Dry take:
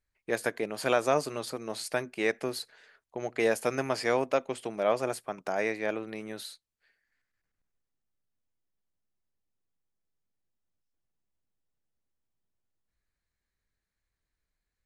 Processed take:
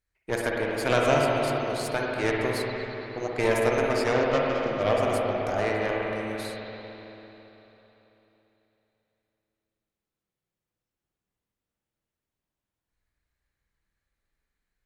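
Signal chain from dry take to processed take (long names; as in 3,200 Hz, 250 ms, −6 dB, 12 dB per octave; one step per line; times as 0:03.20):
0:04.13–0:04.82: variable-slope delta modulation 32 kbit/s
harmonic generator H 6 −16 dB, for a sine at −10 dBFS
spring reverb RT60 3.6 s, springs 49/55 ms, chirp 65 ms, DRR −3 dB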